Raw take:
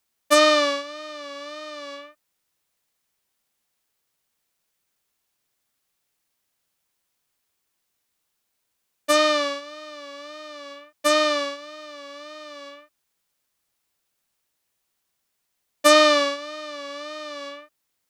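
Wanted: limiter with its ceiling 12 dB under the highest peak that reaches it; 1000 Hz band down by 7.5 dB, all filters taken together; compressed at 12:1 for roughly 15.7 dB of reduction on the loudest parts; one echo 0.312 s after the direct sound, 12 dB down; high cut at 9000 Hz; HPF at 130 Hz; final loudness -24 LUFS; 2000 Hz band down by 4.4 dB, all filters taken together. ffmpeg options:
-af "highpass=130,lowpass=9k,equalizer=f=1k:t=o:g=-8.5,equalizer=f=2k:t=o:g=-3,acompressor=threshold=-30dB:ratio=12,alimiter=level_in=5dB:limit=-24dB:level=0:latency=1,volume=-5dB,aecho=1:1:312:0.251,volume=16dB"

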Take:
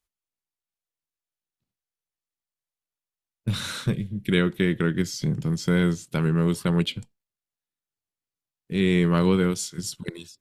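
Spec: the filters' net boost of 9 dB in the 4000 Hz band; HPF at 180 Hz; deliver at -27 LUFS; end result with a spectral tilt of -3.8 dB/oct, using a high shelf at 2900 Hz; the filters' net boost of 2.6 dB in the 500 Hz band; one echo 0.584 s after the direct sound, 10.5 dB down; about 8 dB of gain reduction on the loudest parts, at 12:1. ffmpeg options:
-af "highpass=180,equalizer=f=500:t=o:g=3.5,highshelf=f=2.9k:g=4,equalizer=f=4k:t=o:g=8,acompressor=threshold=-22dB:ratio=12,aecho=1:1:584:0.299,volume=1dB"

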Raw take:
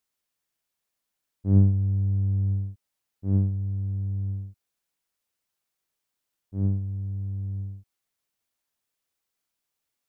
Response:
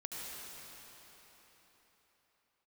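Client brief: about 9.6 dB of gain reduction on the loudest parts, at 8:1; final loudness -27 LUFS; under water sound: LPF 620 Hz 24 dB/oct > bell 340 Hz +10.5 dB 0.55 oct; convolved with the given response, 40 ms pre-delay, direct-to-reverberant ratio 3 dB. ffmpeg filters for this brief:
-filter_complex "[0:a]acompressor=threshold=-23dB:ratio=8,asplit=2[a][b];[1:a]atrim=start_sample=2205,adelay=40[c];[b][c]afir=irnorm=-1:irlink=0,volume=-3.5dB[d];[a][d]amix=inputs=2:normalize=0,lowpass=f=620:w=0.5412,lowpass=f=620:w=1.3066,equalizer=f=340:t=o:w=0.55:g=10.5,volume=3.5dB"

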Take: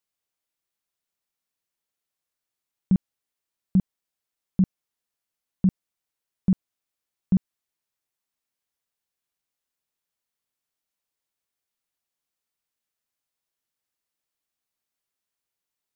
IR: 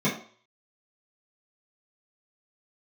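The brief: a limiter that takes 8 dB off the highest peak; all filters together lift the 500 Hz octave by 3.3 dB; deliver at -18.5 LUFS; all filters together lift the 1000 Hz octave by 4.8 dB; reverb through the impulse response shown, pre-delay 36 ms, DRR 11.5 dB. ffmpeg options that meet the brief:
-filter_complex "[0:a]equalizer=f=500:t=o:g=3.5,equalizer=f=1k:t=o:g=5,alimiter=limit=-20.5dB:level=0:latency=1,asplit=2[a][b];[1:a]atrim=start_sample=2205,adelay=36[c];[b][c]afir=irnorm=-1:irlink=0,volume=-24.5dB[d];[a][d]amix=inputs=2:normalize=0,volume=14dB"

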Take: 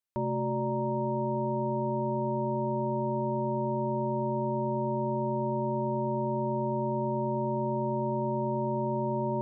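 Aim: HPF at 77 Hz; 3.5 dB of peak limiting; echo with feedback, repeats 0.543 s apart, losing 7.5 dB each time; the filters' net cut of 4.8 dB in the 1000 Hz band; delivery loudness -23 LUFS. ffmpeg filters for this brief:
-af "highpass=77,equalizer=f=1k:t=o:g=-5,alimiter=level_in=0.5dB:limit=-24dB:level=0:latency=1,volume=-0.5dB,aecho=1:1:543|1086|1629|2172|2715:0.422|0.177|0.0744|0.0312|0.0131,volume=8dB"

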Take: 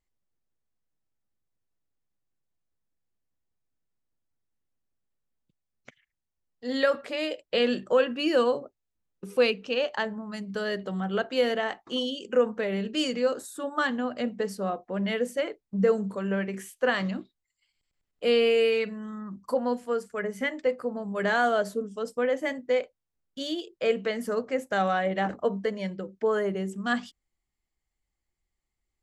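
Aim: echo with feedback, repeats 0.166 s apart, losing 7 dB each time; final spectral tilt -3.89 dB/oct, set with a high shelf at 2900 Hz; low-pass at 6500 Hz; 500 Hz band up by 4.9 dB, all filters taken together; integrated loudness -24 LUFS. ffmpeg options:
-af "lowpass=6.5k,equalizer=f=500:t=o:g=5.5,highshelf=f=2.9k:g=-5.5,aecho=1:1:166|332|498|664|830:0.447|0.201|0.0905|0.0407|0.0183,volume=-0.5dB"

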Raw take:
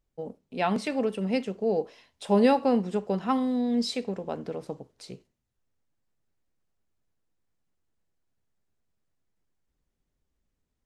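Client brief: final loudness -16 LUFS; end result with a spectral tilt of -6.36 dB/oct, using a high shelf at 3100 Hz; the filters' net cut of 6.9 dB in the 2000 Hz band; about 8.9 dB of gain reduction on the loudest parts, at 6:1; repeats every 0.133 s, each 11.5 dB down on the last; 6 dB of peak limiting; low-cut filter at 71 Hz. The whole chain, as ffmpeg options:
-af "highpass=71,equalizer=f=2k:t=o:g=-6.5,highshelf=f=3.1k:g=-6.5,acompressor=threshold=-26dB:ratio=6,alimiter=limit=-23.5dB:level=0:latency=1,aecho=1:1:133|266|399:0.266|0.0718|0.0194,volume=17.5dB"

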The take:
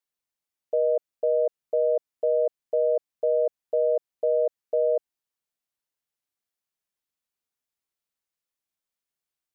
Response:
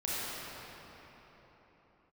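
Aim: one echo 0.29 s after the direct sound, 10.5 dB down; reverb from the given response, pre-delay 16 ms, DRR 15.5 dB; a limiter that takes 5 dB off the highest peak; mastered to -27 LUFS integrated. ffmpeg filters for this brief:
-filter_complex "[0:a]alimiter=limit=-21dB:level=0:latency=1,aecho=1:1:290:0.299,asplit=2[a][b];[1:a]atrim=start_sample=2205,adelay=16[c];[b][c]afir=irnorm=-1:irlink=0,volume=-23dB[d];[a][d]amix=inputs=2:normalize=0,volume=2.5dB"

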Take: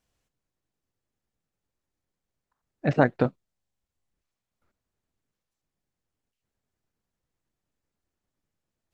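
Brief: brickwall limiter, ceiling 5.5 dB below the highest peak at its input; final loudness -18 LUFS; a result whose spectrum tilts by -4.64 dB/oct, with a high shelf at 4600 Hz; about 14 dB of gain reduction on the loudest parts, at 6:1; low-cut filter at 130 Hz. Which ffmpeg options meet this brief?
-af "highpass=130,highshelf=f=4.6k:g=-4,acompressor=threshold=-30dB:ratio=6,volume=22dB,alimiter=limit=0dB:level=0:latency=1"

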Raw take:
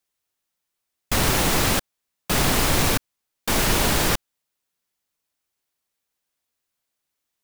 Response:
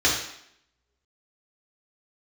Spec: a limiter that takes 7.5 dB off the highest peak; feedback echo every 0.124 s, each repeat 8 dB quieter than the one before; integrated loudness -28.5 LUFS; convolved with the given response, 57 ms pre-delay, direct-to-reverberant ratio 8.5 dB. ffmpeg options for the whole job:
-filter_complex "[0:a]alimiter=limit=-14.5dB:level=0:latency=1,aecho=1:1:124|248|372|496|620:0.398|0.159|0.0637|0.0255|0.0102,asplit=2[a][b];[1:a]atrim=start_sample=2205,adelay=57[c];[b][c]afir=irnorm=-1:irlink=0,volume=-25dB[d];[a][d]amix=inputs=2:normalize=0,volume=-4dB"

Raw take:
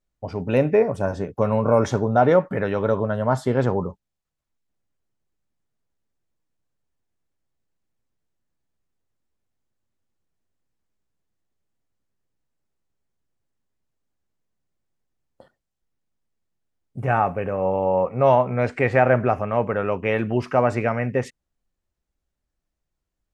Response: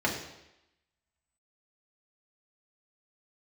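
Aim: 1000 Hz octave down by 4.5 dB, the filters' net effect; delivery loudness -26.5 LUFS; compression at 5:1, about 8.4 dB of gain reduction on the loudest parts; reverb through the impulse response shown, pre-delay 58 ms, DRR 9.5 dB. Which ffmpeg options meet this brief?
-filter_complex "[0:a]equalizer=f=1k:t=o:g=-6.5,acompressor=threshold=-23dB:ratio=5,asplit=2[a][b];[1:a]atrim=start_sample=2205,adelay=58[c];[b][c]afir=irnorm=-1:irlink=0,volume=-20.5dB[d];[a][d]amix=inputs=2:normalize=0,volume=1.5dB"

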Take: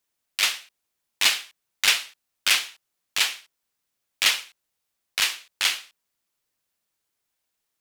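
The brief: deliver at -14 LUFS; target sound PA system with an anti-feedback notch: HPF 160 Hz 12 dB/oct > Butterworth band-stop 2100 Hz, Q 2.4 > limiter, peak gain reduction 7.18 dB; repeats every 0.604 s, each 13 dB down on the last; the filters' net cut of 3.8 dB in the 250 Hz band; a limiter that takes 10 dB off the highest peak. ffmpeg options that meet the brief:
-af "equalizer=f=250:t=o:g=-4.5,alimiter=limit=-16dB:level=0:latency=1,highpass=160,asuperstop=centerf=2100:order=8:qfactor=2.4,aecho=1:1:604|1208|1812:0.224|0.0493|0.0108,volume=21dB,alimiter=limit=-0.5dB:level=0:latency=1"

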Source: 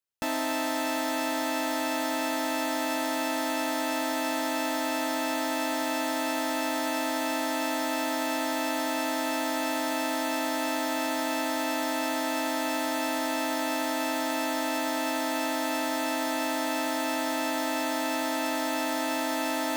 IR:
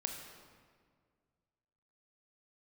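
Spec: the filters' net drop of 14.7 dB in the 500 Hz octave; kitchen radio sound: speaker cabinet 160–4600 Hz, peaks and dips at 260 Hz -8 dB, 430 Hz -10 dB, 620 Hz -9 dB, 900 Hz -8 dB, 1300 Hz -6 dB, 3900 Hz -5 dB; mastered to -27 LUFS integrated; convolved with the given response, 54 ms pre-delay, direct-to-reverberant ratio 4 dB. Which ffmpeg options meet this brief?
-filter_complex "[0:a]equalizer=f=500:t=o:g=-8.5,asplit=2[a][b];[1:a]atrim=start_sample=2205,adelay=54[c];[b][c]afir=irnorm=-1:irlink=0,volume=-4.5dB[d];[a][d]amix=inputs=2:normalize=0,highpass=160,equalizer=f=260:t=q:w=4:g=-8,equalizer=f=430:t=q:w=4:g=-10,equalizer=f=620:t=q:w=4:g=-9,equalizer=f=900:t=q:w=4:g=-8,equalizer=f=1.3k:t=q:w=4:g=-6,equalizer=f=3.9k:t=q:w=4:g=-5,lowpass=f=4.6k:w=0.5412,lowpass=f=4.6k:w=1.3066,volume=6.5dB"

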